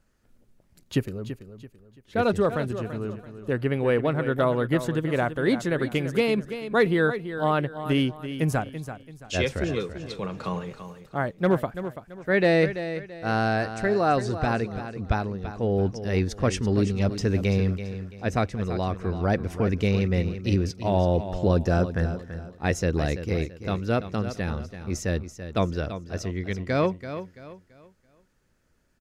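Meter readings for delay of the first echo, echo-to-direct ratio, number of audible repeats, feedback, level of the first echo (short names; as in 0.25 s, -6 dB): 0.335 s, -10.5 dB, 3, 33%, -11.0 dB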